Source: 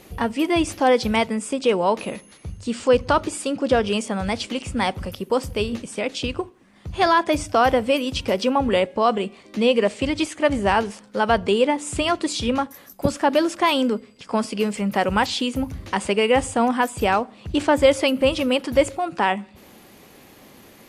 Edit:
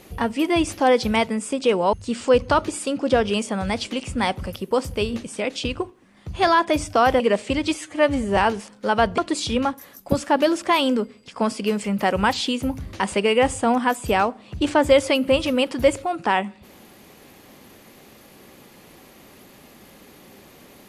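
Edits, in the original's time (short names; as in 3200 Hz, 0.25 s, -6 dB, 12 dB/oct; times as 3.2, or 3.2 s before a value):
1.93–2.52 cut
7.79–9.72 cut
10.26–10.68 stretch 1.5×
11.49–12.11 cut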